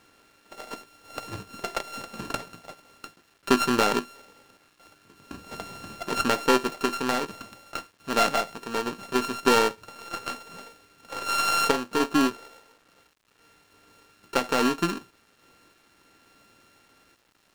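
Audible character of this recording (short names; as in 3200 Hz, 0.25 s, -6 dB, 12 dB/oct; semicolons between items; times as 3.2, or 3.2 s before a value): a buzz of ramps at a fixed pitch in blocks of 32 samples; random-step tremolo; a quantiser's noise floor 10-bit, dither none; IMA ADPCM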